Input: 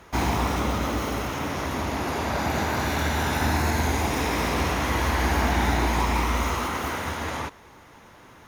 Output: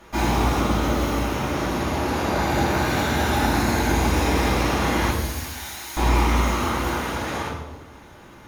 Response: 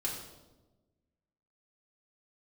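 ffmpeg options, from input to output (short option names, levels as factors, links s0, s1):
-filter_complex "[0:a]asettb=1/sr,asplit=3[s0][s1][s2];[s0]atrim=end=5.104[s3];[s1]atrim=start=5.1:end=5.97,asetpts=PTS-STARTPTS,afade=t=in:d=0.004:c=qsin,afade=t=out:st=0.866:d=0.004:c=qsin,aderivative[s4];[s2]atrim=start=5.966[s5];[s3][s4]acrossfade=d=0.004:c1=hsin:c2=qsin[s6];[s6][s5]acrossfade=d=0.004:c1=qsin:c2=hsin[s7];[1:a]atrim=start_sample=2205[s8];[s7][s8]afir=irnorm=-1:irlink=0"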